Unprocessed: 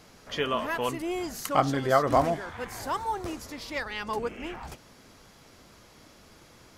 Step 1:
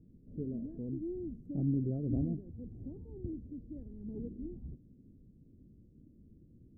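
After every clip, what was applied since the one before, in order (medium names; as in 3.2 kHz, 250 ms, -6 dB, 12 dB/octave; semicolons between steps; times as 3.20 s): inverse Chebyshev low-pass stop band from 1 kHz, stop band 60 dB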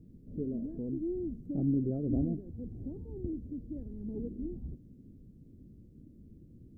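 dynamic bell 120 Hz, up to -6 dB, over -48 dBFS, Q 1; trim +5 dB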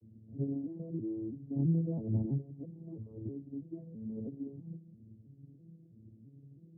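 vocoder on a broken chord major triad, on A2, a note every 328 ms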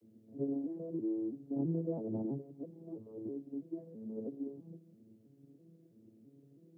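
high-pass 370 Hz 12 dB/octave; trim +6.5 dB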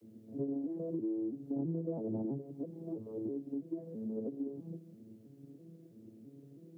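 compression 2.5:1, threshold -43 dBFS, peak gain reduction 9 dB; trim +6.5 dB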